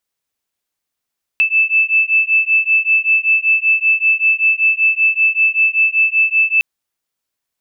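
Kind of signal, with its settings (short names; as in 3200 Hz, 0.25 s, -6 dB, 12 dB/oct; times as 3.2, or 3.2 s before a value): beating tones 2630 Hz, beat 5.2 Hz, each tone -14 dBFS 5.21 s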